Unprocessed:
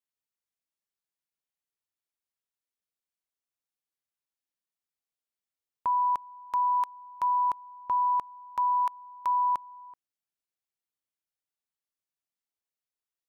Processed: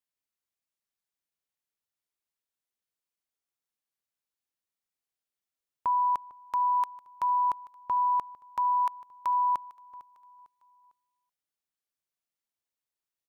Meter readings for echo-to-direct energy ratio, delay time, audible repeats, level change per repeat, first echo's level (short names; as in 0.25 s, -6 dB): -19.5 dB, 0.452 s, 2, -8.0 dB, -20.0 dB